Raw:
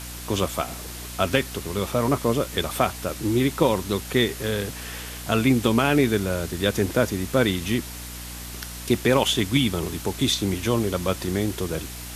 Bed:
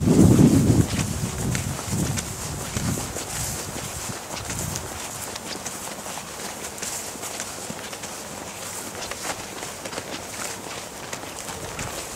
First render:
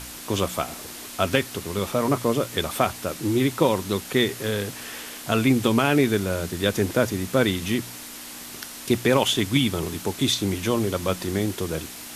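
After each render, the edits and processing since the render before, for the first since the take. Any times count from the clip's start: de-hum 60 Hz, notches 3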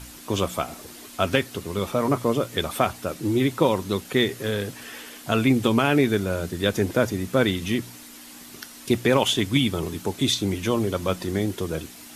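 denoiser 7 dB, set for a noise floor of -39 dBFS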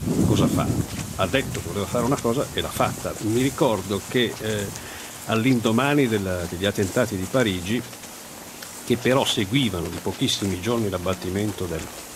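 add bed -6 dB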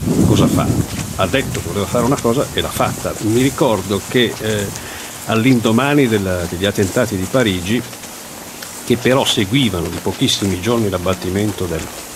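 gain +7.5 dB; limiter -1 dBFS, peak gain reduction 3 dB

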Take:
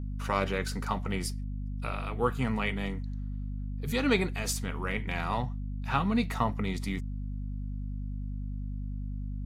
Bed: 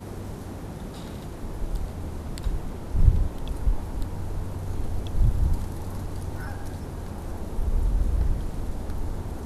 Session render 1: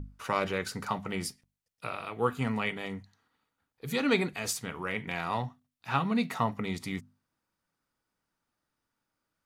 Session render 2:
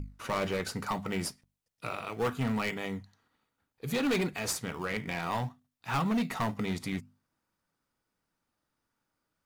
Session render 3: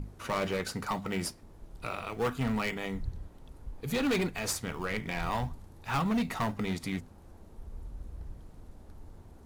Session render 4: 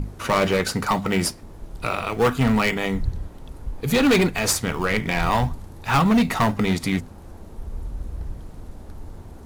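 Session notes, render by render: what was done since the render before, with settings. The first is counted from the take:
notches 50/100/150/200/250 Hz
in parallel at -12 dB: decimation with a swept rate 18×, swing 100% 0.64 Hz; on the sum: hard clip -25 dBFS, distortion -10 dB
add bed -19 dB
gain +11.5 dB

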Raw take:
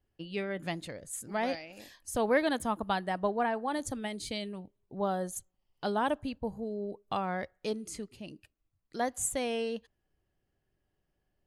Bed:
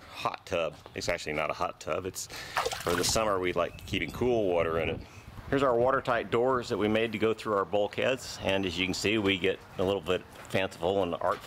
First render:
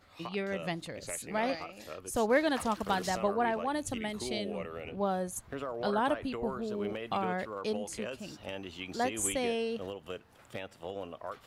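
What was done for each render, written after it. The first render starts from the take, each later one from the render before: add bed -12.5 dB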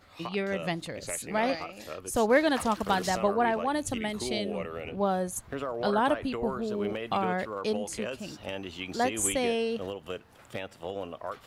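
gain +4 dB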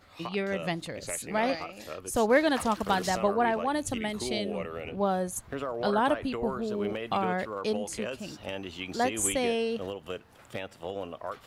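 nothing audible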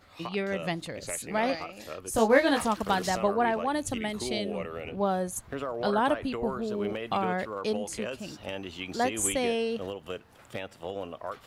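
2.12–2.66 doubler 18 ms -3.5 dB

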